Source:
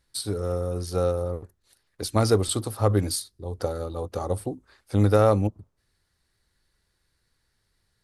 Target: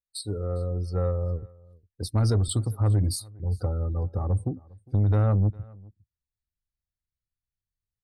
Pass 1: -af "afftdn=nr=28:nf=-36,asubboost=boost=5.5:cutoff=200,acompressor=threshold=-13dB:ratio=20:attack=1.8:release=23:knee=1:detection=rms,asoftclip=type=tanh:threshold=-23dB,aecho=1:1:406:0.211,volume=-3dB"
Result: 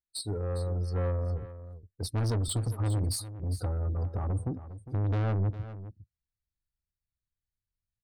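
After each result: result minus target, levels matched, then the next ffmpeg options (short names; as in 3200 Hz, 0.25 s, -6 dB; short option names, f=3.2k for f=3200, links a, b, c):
soft clip: distortion +12 dB; echo-to-direct +11 dB
-af "afftdn=nr=28:nf=-36,asubboost=boost=5.5:cutoff=200,acompressor=threshold=-13dB:ratio=20:attack=1.8:release=23:knee=1:detection=rms,asoftclip=type=tanh:threshold=-12.5dB,aecho=1:1:406:0.211,volume=-3dB"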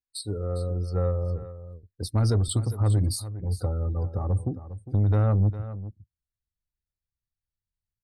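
echo-to-direct +11 dB
-af "afftdn=nr=28:nf=-36,asubboost=boost=5.5:cutoff=200,acompressor=threshold=-13dB:ratio=20:attack=1.8:release=23:knee=1:detection=rms,asoftclip=type=tanh:threshold=-12.5dB,aecho=1:1:406:0.0596,volume=-3dB"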